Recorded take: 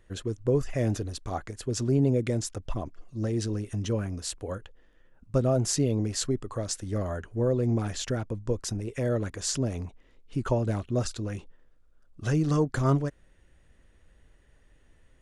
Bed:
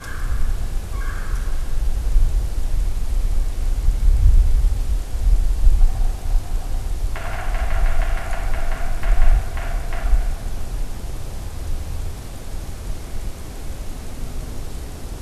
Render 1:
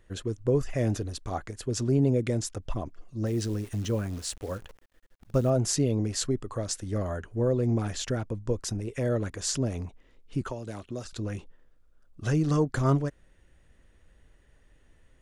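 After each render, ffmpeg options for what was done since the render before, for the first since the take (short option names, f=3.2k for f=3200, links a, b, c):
-filter_complex "[0:a]asettb=1/sr,asplit=3[a][b][c];[a]atrim=end=3.264[d];[b]atrim=start=3.26:end=5.5,asetpts=PTS-STARTPTS,afade=t=in:d=0.004:c=qsin,afade=t=out:st=2.236:d=0.004:c=qsin,acrusher=bits=9:dc=4:mix=0:aa=0.000001[e];[c]atrim=start=5.496[f];[d][e]acrossfade=d=0.004:c1=hsin:c2=qsin[g];[g][f]acrossfade=d=0.004:c1=qsin:c2=hsin,asettb=1/sr,asplit=3[h][i][j];[h]atrim=end=10.414[k];[i]atrim=start=10.41:end=11.13,asetpts=PTS-STARTPTS,afade=t=in:d=0.004:c=qsin,afade=t=out:st=0.716:d=0.004:c=qsin,acrossover=split=230|2800[l][m][n];[l]acompressor=threshold=-43dB:ratio=4[o];[m]acompressor=threshold=-36dB:ratio=4[p];[n]acompressor=threshold=-49dB:ratio=4[q];[o][p][q]amix=inputs=3:normalize=0[r];[j]atrim=start=11.126[s];[k][r]acrossfade=d=0.004:c1=hsin:c2=qsin[t];[t][s]acrossfade=d=0.004:c1=qsin:c2=hsin"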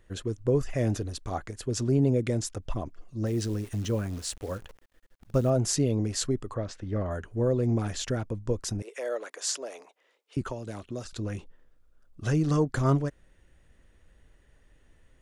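-filter_complex "[0:a]asplit=3[a][b][c];[a]afade=t=out:st=6.53:d=0.02[d];[b]lowpass=2.9k,afade=t=in:st=6.53:d=0.02,afade=t=out:st=7.1:d=0.02[e];[c]afade=t=in:st=7.1:d=0.02[f];[d][e][f]amix=inputs=3:normalize=0,asettb=1/sr,asplit=3[g][h][i];[g]atrim=end=8.824[j];[h]atrim=start=8.82:end=10.37,asetpts=PTS-STARTPTS,afade=t=in:d=0.004:c=qsin,afade=t=out:st=1.546:d=0.004:c=qsin,highpass=f=470:w=0.5412,highpass=f=470:w=1.3066[k];[i]atrim=start=10.366[l];[j][k]acrossfade=d=0.004:c1=hsin:c2=qsin[m];[m][l]acrossfade=d=0.004:c1=qsin:c2=hsin"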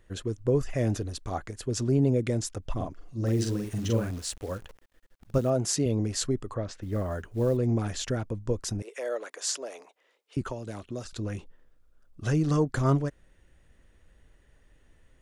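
-filter_complex "[0:a]asettb=1/sr,asplit=3[a][b][c];[a]atrim=end=2.734[d];[b]atrim=start=2.73:end=4.11,asetpts=PTS-STARTPTS,afade=t=in:d=0.004:c=qsin,afade=t=out:st=1.376:d=0.004:c=qsin,asplit=2[e][f];[f]adelay=44,volume=-3dB[g];[e][g]amix=inputs=2:normalize=0,atrim=end_sample=60858[h];[c]atrim=start=4.106[i];[d][h]acrossfade=d=0.004:c1=hsin:c2=qsin[j];[j][i]acrossfade=d=0.004:c1=qsin:c2=hsin,asettb=1/sr,asplit=3[k][l][m];[k]atrim=end=5.384[n];[l]atrim=start=5.38:end=5.86,asetpts=PTS-STARTPTS,afade=t=in:d=0.004:c=qsin,afade=t=out:st=0.476:d=0.004:c=qsin,highpass=f=150:p=1[o];[m]atrim=start=5.856[p];[n][o]acrossfade=d=0.004:c1=hsin:c2=qsin[q];[q][p]acrossfade=d=0.004:c1=qsin:c2=hsin,asettb=1/sr,asplit=3[r][s][t];[r]atrim=end=6.824[u];[s]atrim=start=6.82:end=7.57,asetpts=PTS-STARTPTS,afade=t=in:d=0.004:c=qsin,afade=t=out:st=0.746:d=0.004:c=qsin,acrusher=bits=8:mode=log:mix=0:aa=0.000001[v];[t]atrim=start=7.566[w];[u][v]acrossfade=d=0.004:c1=hsin:c2=qsin[x];[x][w]acrossfade=d=0.004:c1=qsin:c2=hsin"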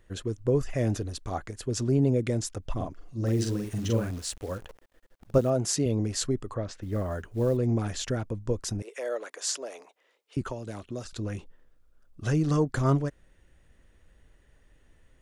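-filter_complex "[0:a]asettb=1/sr,asplit=3[a][b][c];[a]atrim=end=4.574[d];[b]atrim=start=4.57:end=5.41,asetpts=PTS-STARTPTS,afade=t=in:d=0.004:c=qsin,afade=t=out:st=0.836:d=0.004:c=qsin,equalizer=f=570:w=0.69:g=5.5[e];[c]atrim=start=5.406[f];[d][e]acrossfade=d=0.004:c1=hsin:c2=qsin[g];[g][f]acrossfade=d=0.004:c1=qsin:c2=hsin"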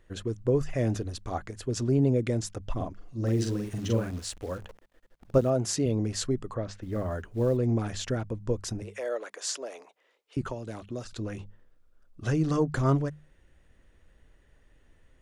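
-af "highshelf=f=6.9k:g=-5.5,bandreject=f=50:t=h:w=6,bandreject=f=100:t=h:w=6,bandreject=f=150:t=h:w=6,bandreject=f=200:t=h:w=6"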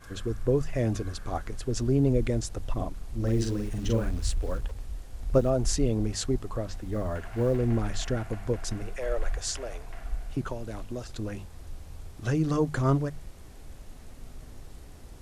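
-filter_complex "[1:a]volume=-16dB[a];[0:a][a]amix=inputs=2:normalize=0"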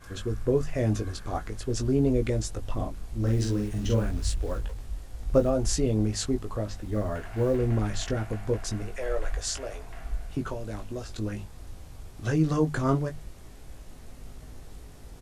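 -filter_complex "[0:a]asplit=2[a][b];[b]adelay=19,volume=-6dB[c];[a][c]amix=inputs=2:normalize=0"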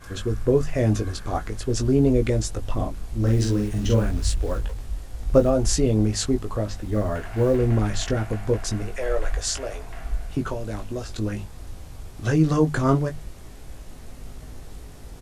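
-af "volume=5dB"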